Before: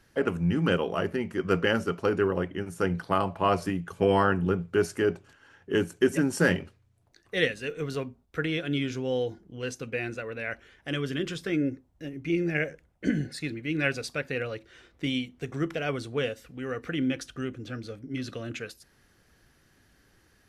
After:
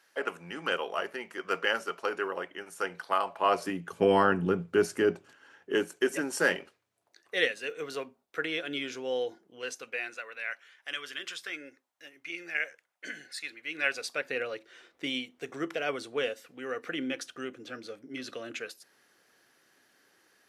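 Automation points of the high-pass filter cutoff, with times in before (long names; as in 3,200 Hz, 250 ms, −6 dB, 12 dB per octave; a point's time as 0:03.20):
0:03.28 660 Hz
0:04.00 180 Hz
0:05.09 180 Hz
0:06.09 460 Hz
0:09.45 460 Hz
0:10.38 1,100 Hz
0:13.46 1,100 Hz
0:14.34 380 Hz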